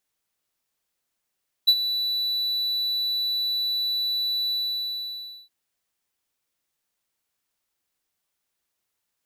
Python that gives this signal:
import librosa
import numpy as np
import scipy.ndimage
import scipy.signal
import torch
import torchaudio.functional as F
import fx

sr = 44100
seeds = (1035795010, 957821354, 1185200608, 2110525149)

y = fx.adsr_tone(sr, wave='triangle', hz=3960.0, attack_ms=16.0, decay_ms=57.0, sustain_db=-12.0, held_s=2.84, release_ms=977.0, level_db=-9.0)